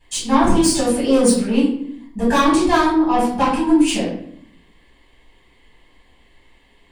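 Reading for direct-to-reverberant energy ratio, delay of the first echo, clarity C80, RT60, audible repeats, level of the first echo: -9.5 dB, none, 7.0 dB, 0.65 s, none, none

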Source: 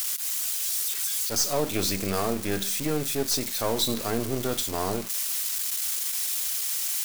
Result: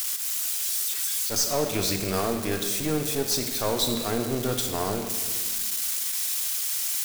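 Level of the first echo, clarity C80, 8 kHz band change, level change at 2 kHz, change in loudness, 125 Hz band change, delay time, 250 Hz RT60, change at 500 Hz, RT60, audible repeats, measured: none, 9.0 dB, +0.5 dB, +1.0 dB, +0.5 dB, +1.5 dB, none, 2.1 s, +1.0 dB, 1.7 s, none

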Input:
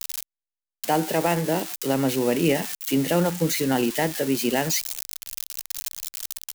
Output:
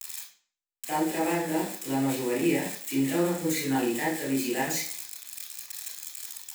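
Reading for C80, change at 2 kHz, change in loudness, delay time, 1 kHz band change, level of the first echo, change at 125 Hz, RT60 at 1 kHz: 9.5 dB, -3.0 dB, -4.5 dB, none, -4.5 dB, none, -7.5 dB, 0.50 s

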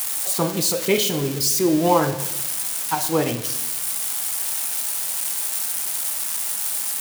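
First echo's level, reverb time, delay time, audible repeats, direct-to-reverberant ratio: none, 1.0 s, none, none, 9.0 dB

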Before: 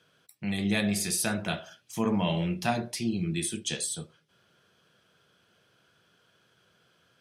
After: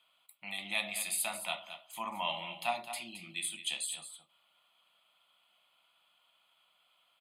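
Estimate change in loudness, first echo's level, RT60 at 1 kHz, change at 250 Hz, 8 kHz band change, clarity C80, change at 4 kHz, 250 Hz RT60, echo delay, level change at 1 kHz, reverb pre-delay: -6.5 dB, -11.0 dB, none, -23.0 dB, -5.0 dB, none, -2.0 dB, none, 0.219 s, -2.5 dB, none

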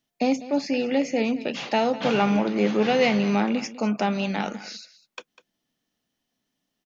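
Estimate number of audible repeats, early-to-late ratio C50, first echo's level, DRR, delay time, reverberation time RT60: 1, none, -16.5 dB, none, 0.199 s, none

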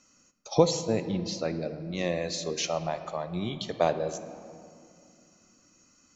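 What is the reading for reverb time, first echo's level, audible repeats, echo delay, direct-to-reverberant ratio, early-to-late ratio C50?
2.6 s, none, none, none, 10.0 dB, 11.0 dB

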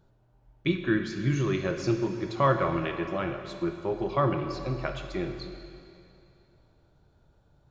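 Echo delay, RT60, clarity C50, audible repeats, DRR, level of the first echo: none, 2.6 s, 6.5 dB, none, 5.5 dB, none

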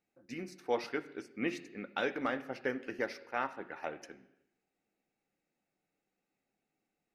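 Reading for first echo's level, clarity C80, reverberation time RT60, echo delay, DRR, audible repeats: none, 17.0 dB, 0.85 s, none, 8.5 dB, none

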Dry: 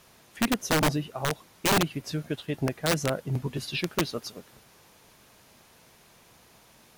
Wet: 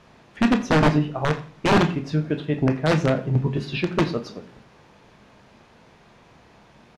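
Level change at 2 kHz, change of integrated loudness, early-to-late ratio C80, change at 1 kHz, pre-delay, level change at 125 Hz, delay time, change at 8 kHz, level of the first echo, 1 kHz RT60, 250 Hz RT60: +4.0 dB, +6.0 dB, 16.5 dB, +6.0 dB, 20 ms, +8.5 dB, 84 ms, -8.5 dB, -19.5 dB, 0.40 s, 0.55 s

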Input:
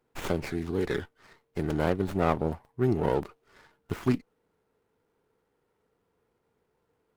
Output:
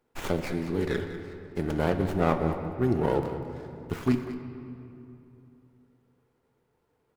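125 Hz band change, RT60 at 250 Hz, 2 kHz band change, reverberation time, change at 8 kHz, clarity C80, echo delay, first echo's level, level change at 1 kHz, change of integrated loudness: +1.5 dB, 3.2 s, +1.0 dB, 2.8 s, n/a, 7.5 dB, 0.196 s, -13.0 dB, +1.0 dB, +0.5 dB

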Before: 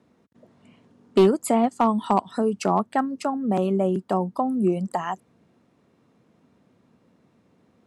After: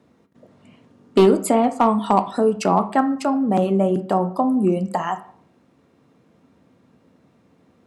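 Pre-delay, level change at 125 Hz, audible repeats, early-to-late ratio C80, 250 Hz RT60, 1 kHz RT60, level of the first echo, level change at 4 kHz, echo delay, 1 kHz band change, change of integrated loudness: 3 ms, +3.5 dB, none, 17.5 dB, 0.60 s, 0.55 s, none, +4.0 dB, none, +4.5 dB, +4.0 dB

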